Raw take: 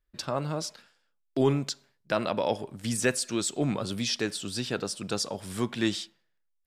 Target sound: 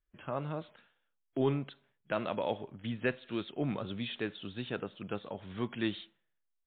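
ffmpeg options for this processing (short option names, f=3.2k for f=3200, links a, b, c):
-af "volume=-5.5dB" -ar 8000 -c:a libmp3lame -b:a 32k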